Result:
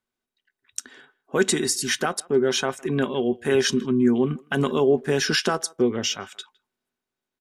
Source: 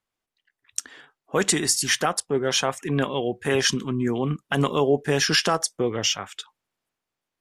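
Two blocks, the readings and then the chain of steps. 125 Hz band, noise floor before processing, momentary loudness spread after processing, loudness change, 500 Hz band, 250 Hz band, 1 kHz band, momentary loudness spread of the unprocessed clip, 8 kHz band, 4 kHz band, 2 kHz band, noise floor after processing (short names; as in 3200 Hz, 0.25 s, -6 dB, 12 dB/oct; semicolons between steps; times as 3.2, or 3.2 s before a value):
-2.0 dB, under -85 dBFS, 13 LU, +0.5 dB, +2.5 dB, +3.5 dB, -3.0 dB, 10 LU, -3.0 dB, -2.5 dB, -1.0 dB, under -85 dBFS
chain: small resonant body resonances 240/380/1500/3800 Hz, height 11 dB, ringing for 80 ms; speakerphone echo 0.16 s, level -24 dB; gain -3 dB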